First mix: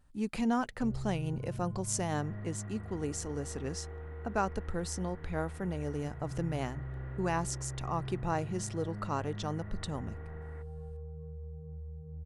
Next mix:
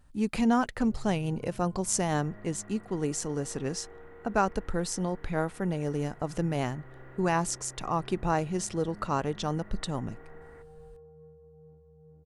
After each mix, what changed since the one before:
speech +5.5 dB
first sound: add high-pass filter 230 Hz 12 dB per octave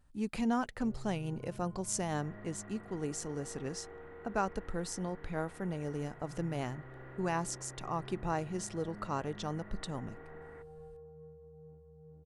speech −7.0 dB

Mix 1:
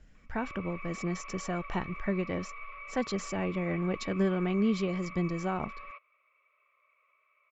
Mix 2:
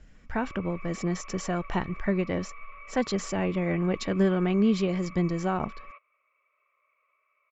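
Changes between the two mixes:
speech +4.5 dB
background: add high-frequency loss of the air 230 metres

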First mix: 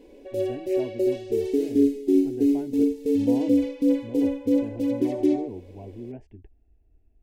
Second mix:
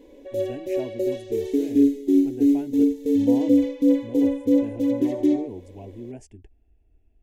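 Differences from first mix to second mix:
speech: remove high-frequency loss of the air 390 metres
background: add EQ curve with evenly spaced ripples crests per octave 1.1, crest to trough 6 dB

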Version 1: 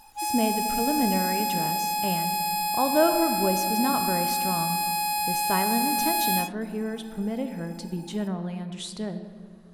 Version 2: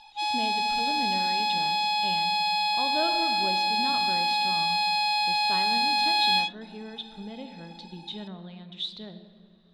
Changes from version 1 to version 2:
speech −10.5 dB
master: add low-pass with resonance 3,700 Hz, resonance Q 12

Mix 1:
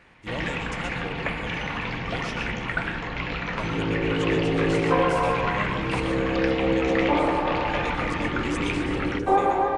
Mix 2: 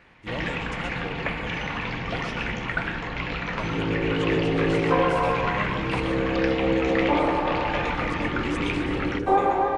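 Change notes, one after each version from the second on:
speech: add parametric band 8,200 Hz −6 dB 1.7 octaves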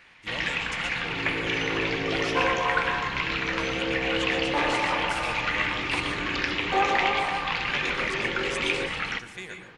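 second sound: entry −2.55 s
master: add tilt shelving filter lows −8 dB, about 1,300 Hz

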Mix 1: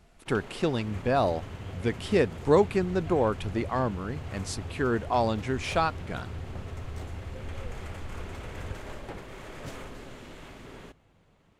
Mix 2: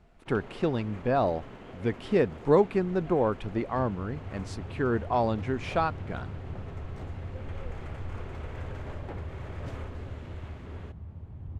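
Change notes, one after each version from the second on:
second sound: entry +2.85 s
master: add low-pass filter 1,800 Hz 6 dB per octave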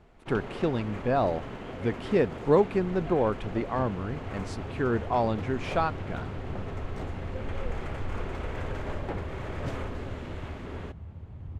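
first sound +6.5 dB

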